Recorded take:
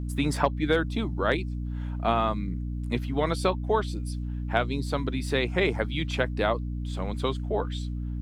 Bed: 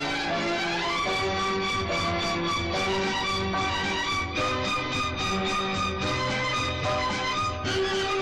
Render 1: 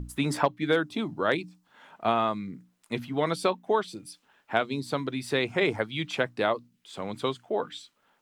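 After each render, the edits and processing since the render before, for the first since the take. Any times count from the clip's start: hum notches 60/120/180/240/300 Hz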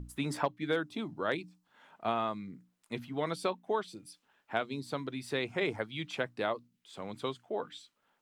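trim -7 dB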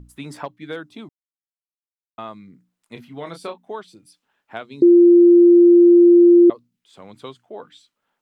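1.09–2.18 s: mute; 2.93–3.68 s: doubling 29 ms -7 dB; 4.82–6.50 s: bleep 347 Hz -6.5 dBFS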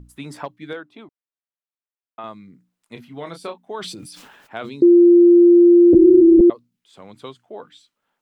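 0.73–2.24 s: tone controls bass -11 dB, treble -14 dB; 3.74–4.86 s: decay stretcher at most 34 dB/s; 5.93–6.41 s: LPC vocoder at 8 kHz whisper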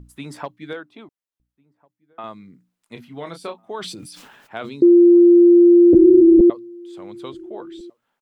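echo from a far wall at 240 m, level -27 dB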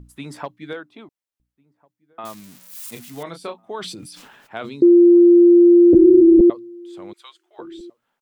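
2.25–3.23 s: zero-crossing glitches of -29 dBFS; 7.13–7.59 s: Bessel high-pass 1.4 kHz, order 4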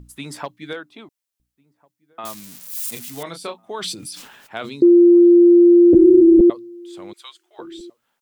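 treble shelf 2.9 kHz +8.5 dB

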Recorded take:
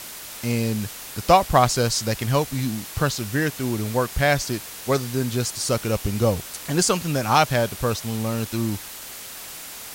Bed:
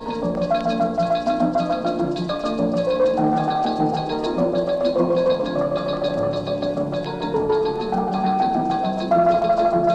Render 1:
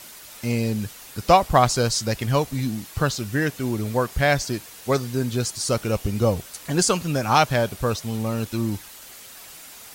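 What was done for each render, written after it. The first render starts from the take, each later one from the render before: noise reduction 7 dB, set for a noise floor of -38 dBFS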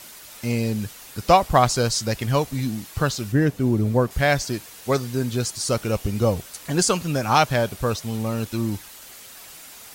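3.32–4.11 s: tilt shelf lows +6.5 dB, about 740 Hz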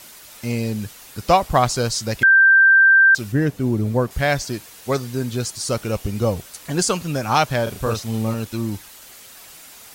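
2.23–3.15 s: bleep 1.57 kHz -8.5 dBFS; 7.63–8.34 s: doubling 36 ms -4 dB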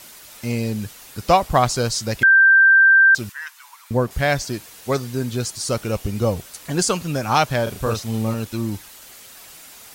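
3.29–3.91 s: Chebyshev high-pass 950 Hz, order 5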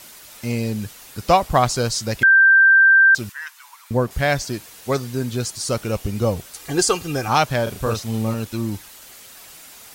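6.56–7.28 s: comb 2.5 ms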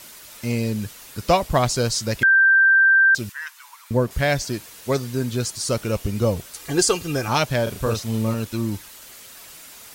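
band-stop 770 Hz, Q 12; dynamic bell 1.2 kHz, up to -5 dB, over -29 dBFS, Q 1.7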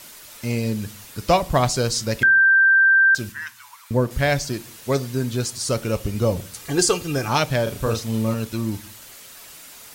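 simulated room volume 330 m³, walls furnished, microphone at 0.31 m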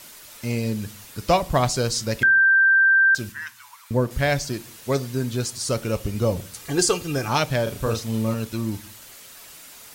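trim -1.5 dB

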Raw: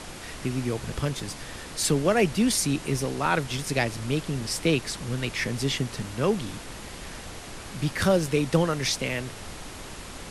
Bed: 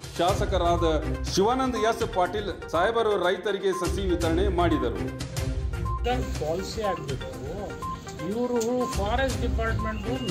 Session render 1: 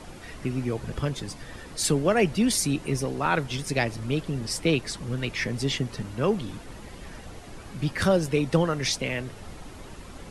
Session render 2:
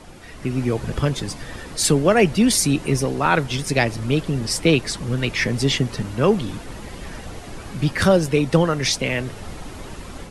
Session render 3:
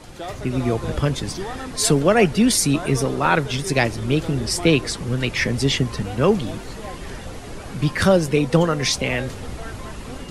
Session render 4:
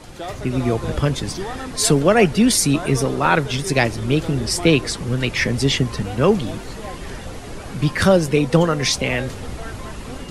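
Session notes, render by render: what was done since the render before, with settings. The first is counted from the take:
noise reduction 9 dB, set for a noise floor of -40 dBFS
level rider gain up to 7.5 dB
add bed -9 dB
trim +1.5 dB

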